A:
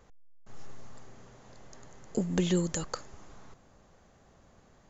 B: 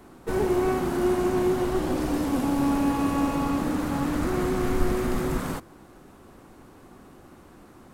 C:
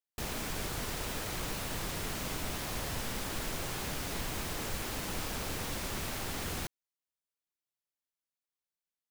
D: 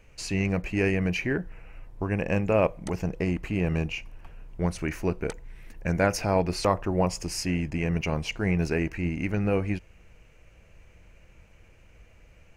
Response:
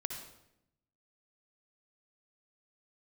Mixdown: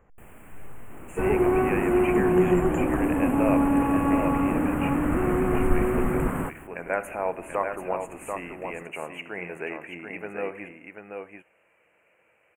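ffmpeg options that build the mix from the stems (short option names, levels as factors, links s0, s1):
-filter_complex "[0:a]volume=0.944,asplit=2[s0][s1];[s1]volume=0.106[s2];[1:a]adelay=900,volume=1.26[s3];[2:a]volume=0.282,asplit=3[s4][s5][s6];[s4]atrim=end=2.29,asetpts=PTS-STARTPTS,afade=t=out:st=2.286:d=0.004:c=hsin[s7];[s5]atrim=start=2.29:end=3.86,asetpts=PTS-STARTPTS,volume=0[s8];[s6]atrim=start=3.86,asetpts=PTS-STARTPTS,afade=t=in:d=0.004:c=hsin[s9];[s7][s8][s9]concat=n=3:v=0:a=1,asplit=2[s10][s11];[s11]volume=0.0841[s12];[3:a]highpass=490,adelay=900,volume=0.631,asplit=3[s13][s14][s15];[s14]volume=0.398[s16];[s15]volume=0.708[s17];[4:a]atrim=start_sample=2205[s18];[s2][s16]amix=inputs=2:normalize=0[s19];[s19][s18]afir=irnorm=-1:irlink=0[s20];[s12][s17]amix=inputs=2:normalize=0,aecho=0:1:736:1[s21];[s0][s3][s10][s13][s20][s21]amix=inputs=6:normalize=0,asuperstop=centerf=4700:order=8:qfactor=0.94,highshelf=f=4700:g=-6"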